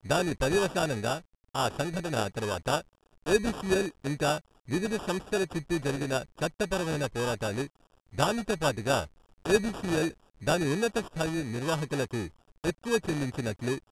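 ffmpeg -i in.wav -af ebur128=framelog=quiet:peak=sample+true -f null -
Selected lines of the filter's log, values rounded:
Integrated loudness:
  I:         -30.2 LUFS
  Threshold: -40.4 LUFS
Loudness range:
  LRA:         1.8 LU
  Threshold: -50.4 LUFS
  LRA low:   -31.2 LUFS
  LRA high:  -29.4 LUFS
Sample peak:
  Peak:       -9.3 dBFS
True peak:
  Peak:       -9.3 dBFS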